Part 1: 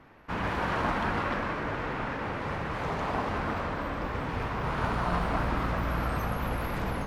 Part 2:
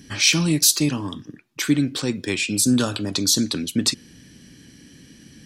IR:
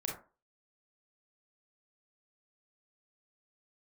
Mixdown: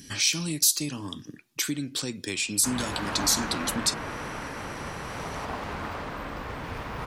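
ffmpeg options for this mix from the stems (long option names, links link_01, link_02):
-filter_complex "[0:a]adelay=2350,volume=-4.5dB,asplit=2[link_01][link_02];[link_02]volume=-7.5dB[link_03];[1:a]acompressor=threshold=-31dB:ratio=2,volume=-3.5dB[link_04];[link_03]aecho=0:1:454:1[link_05];[link_01][link_04][link_05]amix=inputs=3:normalize=0,highshelf=frequency=3700:gain=10.5"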